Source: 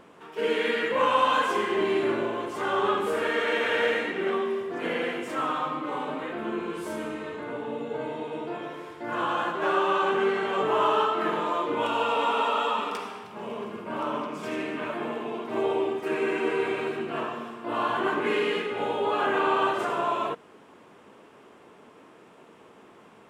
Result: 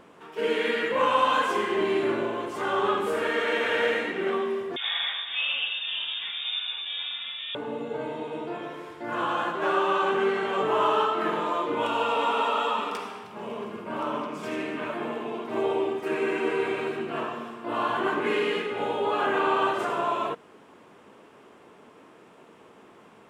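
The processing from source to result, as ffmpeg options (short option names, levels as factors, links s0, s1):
-filter_complex "[0:a]asettb=1/sr,asplit=3[s0][s1][s2];[s0]atrim=end=4.764[s3];[s1]atrim=start=4.76:end=7.55,asetpts=PTS-STARTPTS,afade=t=in:d=0.004:c=qsin,afade=t=out:st=2.786:d=0.004:c=qsin,lowpass=f=3300:t=q:w=0.5098,lowpass=f=3300:t=q:w=0.6013,lowpass=f=3300:t=q:w=0.9,lowpass=f=3300:t=q:w=2.563,afreqshift=-3900[s4];[s2]atrim=start=7.546[s5];[s3][s4]acrossfade=d=0.004:c1=hsin:c2=qsin[s6];[s6][s5]acrossfade=d=0.004:c1=qsin:c2=hsin"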